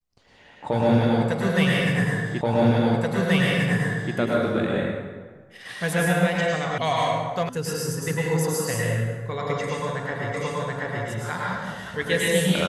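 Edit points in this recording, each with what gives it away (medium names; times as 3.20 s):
2.41 s: repeat of the last 1.73 s
6.78 s: sound stops dead
7.49 s: sound stops dead
10.34 s: repeat of the last 0.73 s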